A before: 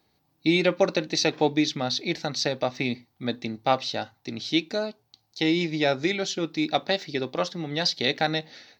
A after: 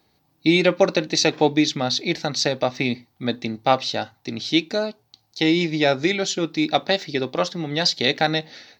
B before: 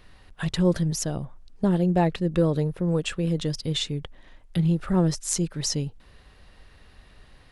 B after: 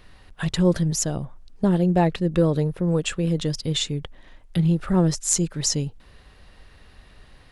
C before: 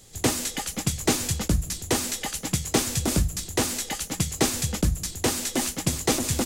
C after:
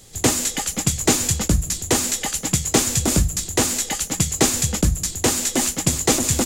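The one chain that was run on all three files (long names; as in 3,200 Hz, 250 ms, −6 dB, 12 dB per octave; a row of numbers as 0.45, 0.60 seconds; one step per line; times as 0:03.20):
dynamic equaliser 7,100 Hz, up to +7 dB, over −47 dBFS, Q 5.3
normalise the peak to −3 dBFS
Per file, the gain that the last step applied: +4.5, +2.5, +4.5 decibels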